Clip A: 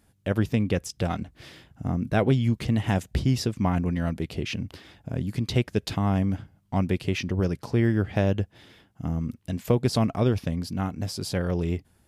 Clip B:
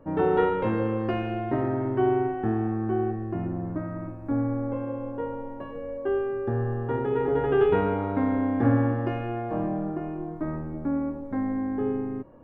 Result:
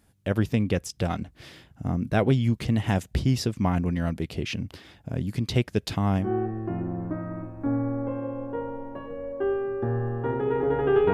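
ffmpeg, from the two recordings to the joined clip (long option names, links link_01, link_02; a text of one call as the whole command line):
ffmpeg -i cue0.wav -i cue1.wav -filter_complex "[0:a]apad=whole_dur=11.13,atrim=end=11.13,atrim=end=6.32,asetpts=PTS-STARTPTS[link_01];[1:a]atrim=start=2.81:end=7.78,asetpts=PTS-STARTPTS[link_02];[link_01][link_02]acrossfade=duration=0.16:curve1=tri:curve2=tri" out.wav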